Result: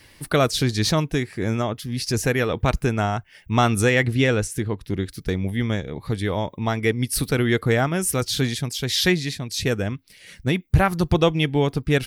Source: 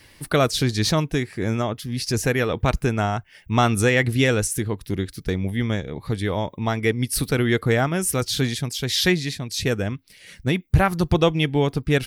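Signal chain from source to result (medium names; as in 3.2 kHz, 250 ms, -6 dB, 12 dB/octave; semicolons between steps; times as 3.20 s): 4.05–5.03 s: treble shelf 6.5 kHz -10 dB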